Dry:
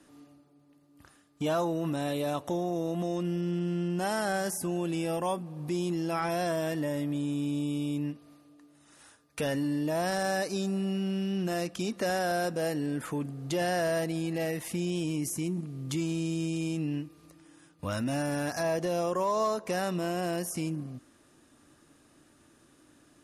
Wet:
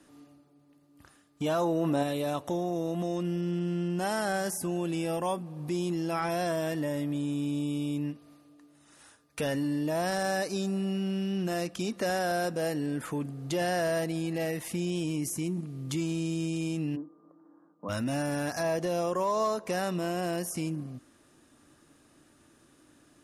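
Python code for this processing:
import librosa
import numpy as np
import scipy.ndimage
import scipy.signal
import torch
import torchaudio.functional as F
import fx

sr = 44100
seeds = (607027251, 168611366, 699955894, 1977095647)

y = fx.peak_eq(x, sr, hz=550.0, db=fx.line((1.6, 2.0), (2.02, 8.5)), octaves=2.2, at=(1.6, 2.02), fade=0.02)
y = fx.ellip_bandpass(y, sr, low_hz=200.0, high_hz=1200.0, order=3, stop_db=40, at=(16.95, 17.88), fade=0.02)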